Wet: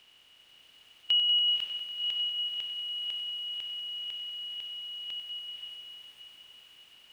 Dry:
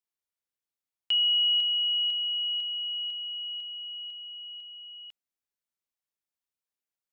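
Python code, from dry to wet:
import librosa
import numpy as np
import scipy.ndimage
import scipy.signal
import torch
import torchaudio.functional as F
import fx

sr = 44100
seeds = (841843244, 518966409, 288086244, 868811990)

y = fx.bin_compress(x, sr, power=0.4)
y = fx.echo_diffused(y, sr, ms=539, feedback_pct=44, wet_db=-3)
y = fx.echo_crushed(y, sr, ms=95, feedback_pct=80, bits=10, wet_db=-10.0)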